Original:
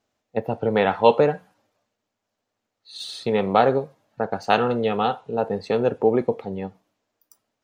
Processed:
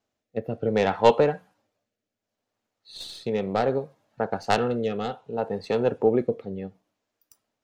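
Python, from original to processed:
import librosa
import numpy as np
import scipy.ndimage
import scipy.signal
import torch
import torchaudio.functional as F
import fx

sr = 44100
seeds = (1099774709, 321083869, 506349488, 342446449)

y = fx.tracing_dist(x, sr, depth_ms=0.084)
y = fx.rotary(y, sr, hz=0.65)
y = y * 10.0 ** (-1.5 / 20.0)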